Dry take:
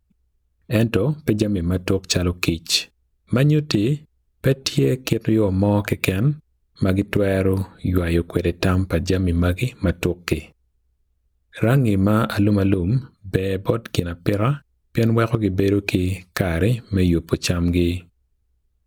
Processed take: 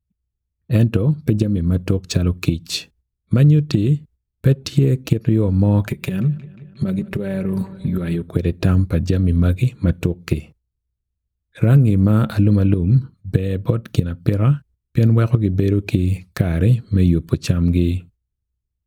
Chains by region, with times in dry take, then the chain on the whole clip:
5.87–8.22 s: comb 5.2 ms, depth 72% + compression 5:1, threshold -19 dBFS + filtered feedback delay 179 ms, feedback 77%, low-pass 4.5 kHz, level -20 dB
whole clip: gate -46 dBFS, range -11 dB; peaking EQ 120 Hz +12 dB 2.2 oct; trim -5.5 dB

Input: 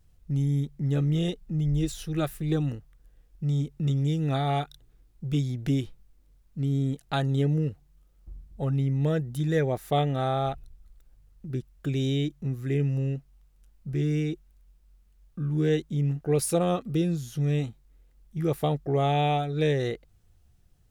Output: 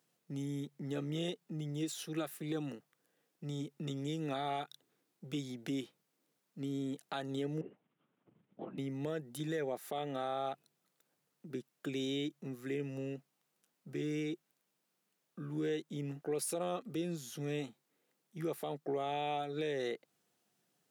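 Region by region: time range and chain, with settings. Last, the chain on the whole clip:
7.61–8.78 s: compression 4:1, threshold -33 dBFS + careless resampling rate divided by 6×, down filtered, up hold + LPC vocoder at 8 kHz whisper
whole clip: Bessel high-pass 290 Hz, order 8; compression 2:1, threshold -32 dBFS; peak limiter -25.5 dBFS; trim -2.5 dB

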